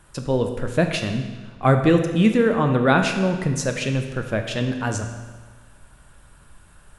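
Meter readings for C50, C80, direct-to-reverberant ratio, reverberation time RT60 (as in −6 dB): 7.0 dB, 8.5 dB, 5.0 dB, 1.4 s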